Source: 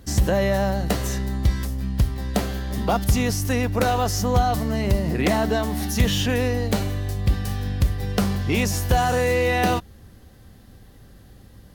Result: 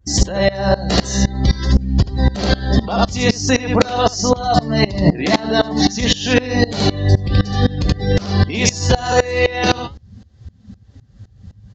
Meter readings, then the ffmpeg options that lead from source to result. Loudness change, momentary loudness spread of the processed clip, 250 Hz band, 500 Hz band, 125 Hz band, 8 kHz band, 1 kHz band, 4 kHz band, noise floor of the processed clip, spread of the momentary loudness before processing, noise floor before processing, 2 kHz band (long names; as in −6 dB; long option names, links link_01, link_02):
+6.0 dB, 3 LU, +7.0 dB, +6.0 dB, +5.5 dB, +7.0 dB, +4.5 dB, +10.0 dB, −49 dBFS, 6 LU, −48 dBFS, +6.0 dB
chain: -filter_complex "[0:a]highpass=frequency=92:poles=1,adynamicequalizer=threshold=0.00501:dfrequency=4400:dqfactor=1.4:tfrequency=4400:tqfactor=1.4:attack=5:release=100:ratio=0.375:range=3:mode=boostabove:tftype=bell,afftdn=noise_reduction=23:noise_floor=-35,flanger=delay=2.3:depth=9.1:regen=69:speed=0.48:shape=triangular,bass=frequency=250:gain=0,treble=frequency=4000:gain=4,aresample=16000,aresample=44100,asplit=2[link_01][link_02];[link_02]aecho=0:1:75:0.447[link_03];[link_01][link_03]amix=inputs=2:normalize=0,acompressor=threshold=-31dB:ratio=6,alimiter=level_in=28.5dB:limit=-1dB:release=50:level=0:latency=1,aeval=exprs='val(0)*pow(10,-22*if(lt(mod(-3.9*n/s,1),2*abs(-3.9)/1000),1-mod(-3.9*n/s,1)/(2*abs(-3.9)/1000),(mod(-3.9*n/s,1)-2*abs(-3.9)/1000)/(1-2*abs(-3.9)/1000))/20)':channel_layout=same"